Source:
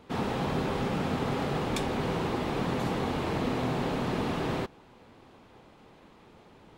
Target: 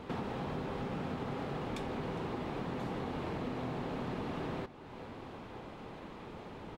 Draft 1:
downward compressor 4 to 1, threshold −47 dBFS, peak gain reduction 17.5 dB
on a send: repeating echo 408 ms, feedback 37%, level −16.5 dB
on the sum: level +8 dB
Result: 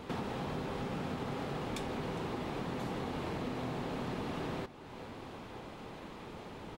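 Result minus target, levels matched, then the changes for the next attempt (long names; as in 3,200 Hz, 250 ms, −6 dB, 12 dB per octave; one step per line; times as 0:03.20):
8,000 Hz band +6.0 dB
add after downward compressor: high-shelf EQ 4,600 Hz −9 dB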